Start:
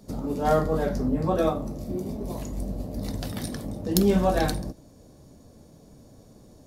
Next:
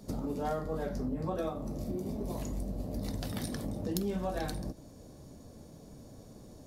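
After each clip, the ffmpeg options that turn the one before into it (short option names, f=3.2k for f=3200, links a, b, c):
-af "acompressor=threshold=-33dB:ratio=4"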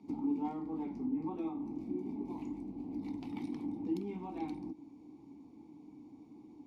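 -filter_complex "[0:a]asplit=3[a][b][c];[a]bandpass=f=300:t=q:w=8,volume=0dB[d];[b]bandpass=f=870:t=q:w=8,volume=-6dB[e];[c]bandpass=f=2.24k:t=q:w=8,volume=-9dB[f];[d][e][f]amix=inputs=3:normalize=0,volume=8dB"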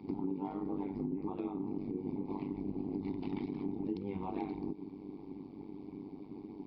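-af "aresample=11025,aresample=44100,acompressor=threshold=-42dB:ratio=6,tremolo=f=98:d=0.889,volume=11dB"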